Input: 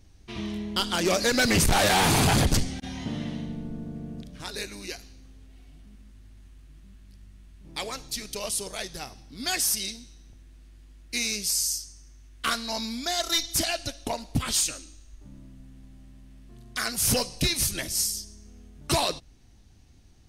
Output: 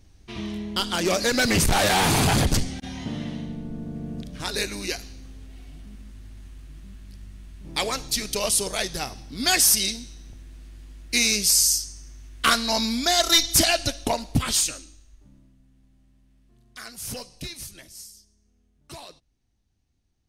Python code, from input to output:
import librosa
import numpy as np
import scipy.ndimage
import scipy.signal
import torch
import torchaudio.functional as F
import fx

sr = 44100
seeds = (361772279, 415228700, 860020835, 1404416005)

y = fx.gain(x, sr, db=fx.line((3.64, 1.0), (4.55, 7.5), (13.92, 7.5), (14.79, 1.0), (15.58, -10.5), (17.43, -10.5), (18.11, -17.0)))